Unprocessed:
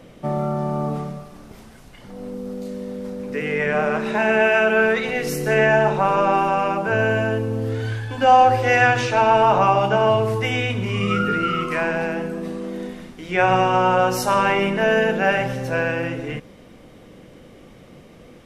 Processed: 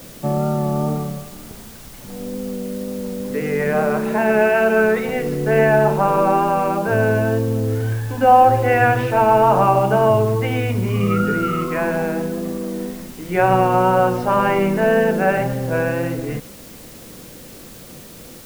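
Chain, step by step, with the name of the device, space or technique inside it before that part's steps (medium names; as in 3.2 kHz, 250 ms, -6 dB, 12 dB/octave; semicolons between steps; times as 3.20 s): cassette deck with a dirty head (tape spacing loss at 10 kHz 42 dB; wow and flutter 25 cents; white noise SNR 24 dB); trim +5 dB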